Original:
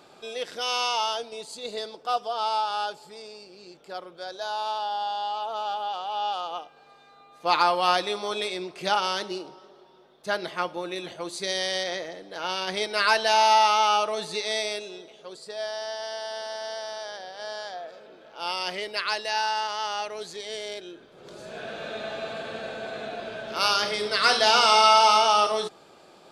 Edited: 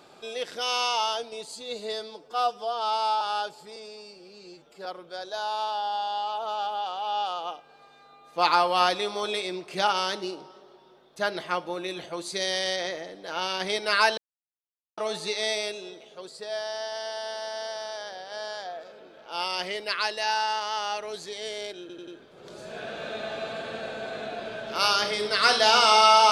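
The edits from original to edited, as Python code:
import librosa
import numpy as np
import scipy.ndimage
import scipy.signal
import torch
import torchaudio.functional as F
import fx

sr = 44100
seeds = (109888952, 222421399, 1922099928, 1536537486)

y = fx.edit(x, sr, fx.stretch_span(start_s=1.53, length_s=1.12, factor=1.5),
    fx.stretch_span(start_s=3.2, length_s=0.73, factor=1.5),
    fx.silence(start_s=13.25, length_s=0.8),
    fx.stutter(start_s=20.88, slice_s=0.09, count=4), tone=tone)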